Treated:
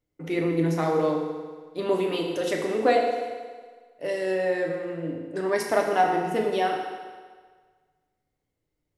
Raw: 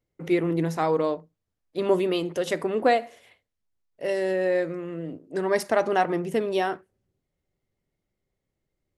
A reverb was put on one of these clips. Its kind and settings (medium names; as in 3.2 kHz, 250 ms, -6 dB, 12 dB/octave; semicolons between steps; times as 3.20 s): FDN reverb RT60 1.6 s, low-frequency decay 0.85×, high-frequency decay 0.9×, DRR 0 dB; trim -2.5 dB